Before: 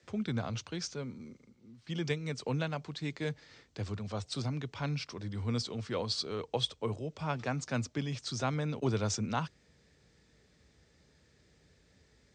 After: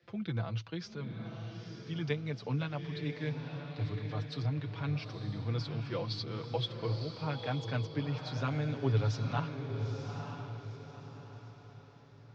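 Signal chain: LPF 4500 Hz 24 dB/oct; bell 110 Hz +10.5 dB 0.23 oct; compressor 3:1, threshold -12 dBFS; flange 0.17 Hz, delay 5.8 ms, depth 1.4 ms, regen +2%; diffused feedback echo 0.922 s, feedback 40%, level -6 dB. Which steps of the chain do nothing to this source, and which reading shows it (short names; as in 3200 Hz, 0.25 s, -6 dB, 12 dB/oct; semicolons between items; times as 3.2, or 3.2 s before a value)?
compressor, threshold -12 dBFS: input peak -17.0 dBFS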